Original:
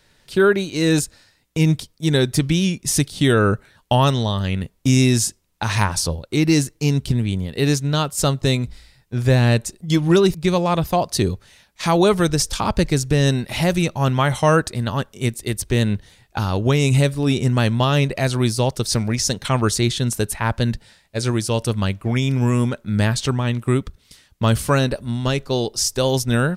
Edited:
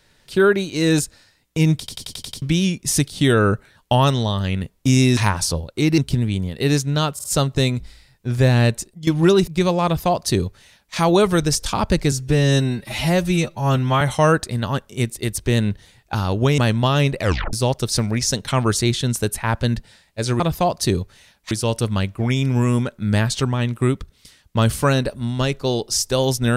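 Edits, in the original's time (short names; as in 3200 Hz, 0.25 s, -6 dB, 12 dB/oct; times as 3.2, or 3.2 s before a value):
1.79 stutter in place 0.09 s, 7 plays
5.17–5.72 cut
6.53–6.95 cut
8.11 stutter 0.05 s, 3 plays
9.66–9.94 fade out, to -14.5 dB
10.72–11.83 copy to 21.37
12.99–14.25 stretch 1.5×
16.82–17.55 cut
18.17 tape stop 0.33 s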